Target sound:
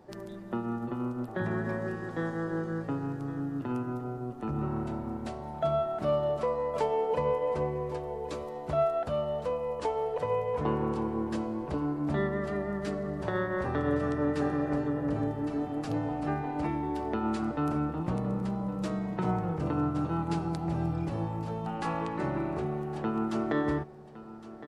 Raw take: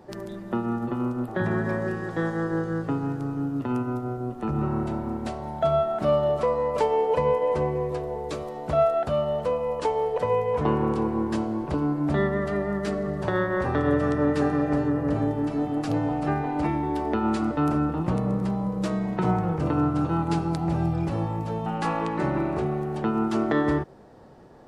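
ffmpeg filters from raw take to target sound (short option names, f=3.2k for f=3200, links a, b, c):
-af "aecho=1:1:1113:0.168,volume=-6dB"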